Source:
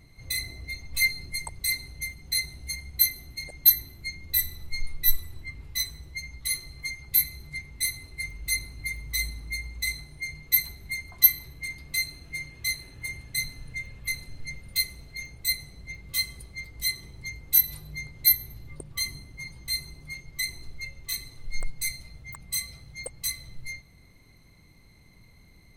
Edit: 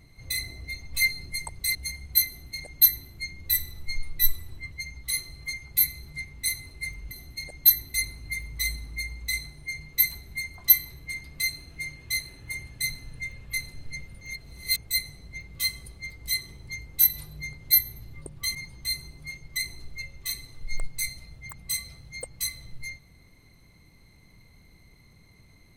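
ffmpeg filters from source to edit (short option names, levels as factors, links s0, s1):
-filter_complex "[0:a]asplit=8[s0][s1][s2][s3][s4][s5][s6][s7];[s0]atrim=end=1.752[s8];[s1]atrim=start=2.588:end=5.562[s9];[s2]atrim=start=6.088:end=8.482[s10];[s3]atrim=start=3.108:end=3.942[s11];[s4]atrim=start=8.478:end=14.752[s12];[s5]atrim=start=14.748:end=15.312,asetpts=PTS-STARTPTS,areverse[s13];[s6]atrim=start=15.308:end=19.092[s14];[s7]atrim=start=19.378[s15];[s8][s9]acrossfade=d=0.004:c1=hsin:c2=hsin[s16];[s16][s10]acrossfade=d=0.004:c1=hsin:c2=hsin[s17];[s17][s11]acrossfade=d=0.004:c1=hsin:c2=hsin[s18];[s18][s12]acrossfade=d=0.004:c1=hsin:c2=hsin[s19];[s19][s13]acrossfade=d=0.004:c1=hsin:c2=hsin[s20];[s20][s14]acrossfade=d=0.004:c1=hsin:c2=hsin[s21];[s21][s15]acrossfade=d=0.004:c1=hsin:c2=hsin"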